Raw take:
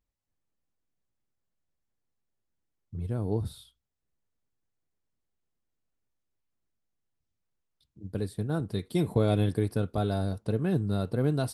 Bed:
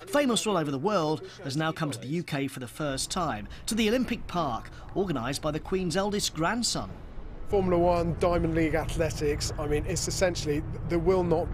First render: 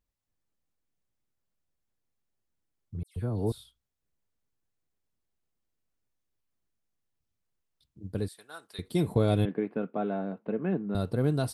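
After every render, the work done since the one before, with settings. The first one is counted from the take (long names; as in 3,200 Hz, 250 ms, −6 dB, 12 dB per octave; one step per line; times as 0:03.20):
0:03.03–0:03.52: all-pass dispersion lows, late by 131 ms, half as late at 2,800 Hz
0:08.28–0:08.79: high-pass filter 1,300 Hz
0:09.45–0:10.95: elliptic band-pass filter 190–2,500 Hz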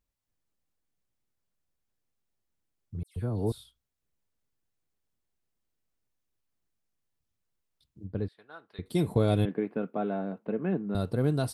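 0:08.04–0:08.86: high-frequency loss of the air 360 metres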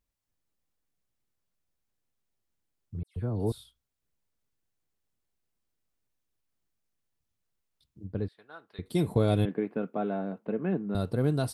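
0:02.99–0:03.40: low-pass filter 2,400 Hz 6 dB per octave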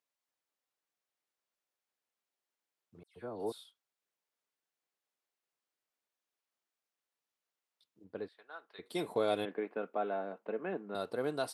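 high-pass filter 510 Hz 12 dB per octave
high-shelf EQ 6,300 Hz −7.5 dB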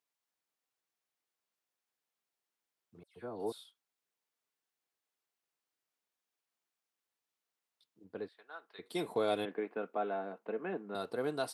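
high-pass filter 84 Hz
notch filter 570 Hz, Q 12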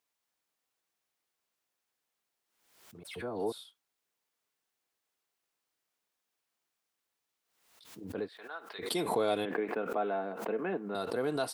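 in parallel at −3 dB: brickwall limiter −32 dBFS, peak gain reduction 11.5 dB
on the sum: background raised ahead of every attack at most 68 dB per second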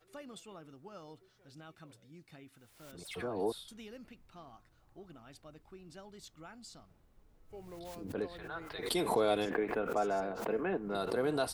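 mix in bed −24.5 dB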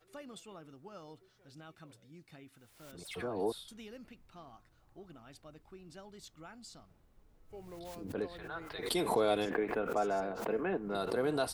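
no processing that can be heard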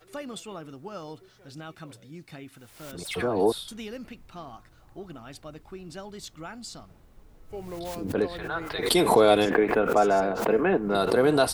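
level +11.5 dB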